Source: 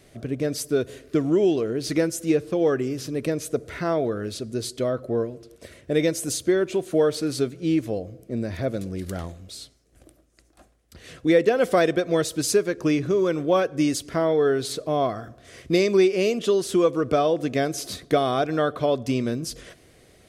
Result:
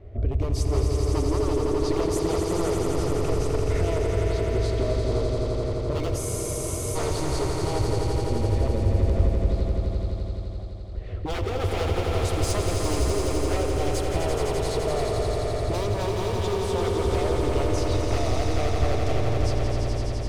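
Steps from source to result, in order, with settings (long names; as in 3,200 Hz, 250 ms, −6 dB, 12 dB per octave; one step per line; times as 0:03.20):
sub-octave generator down 1 octave, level −2 dB
low-pass that shuts in the quiet parts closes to 1,400 Hz, open at −19.5 dBFS
wave folding −19.5 dBFS
thirty-one-band graphic EQ 100 Hz +11 dB, 400 Hz +9 dB, 630 Hz +6 dB, 1,600 Hz −7 dB
downward compressor, threshold −28 dBFS, peak gain reduction 13.5 dB
low shelf with overshoot 100 Hz +13.5 dB, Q 1.5
on a send: echo that builds up and dies away 85 ms, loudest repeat 5, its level −6 dB
on the sum: frozen spectrum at 0:06.19, 0.76 s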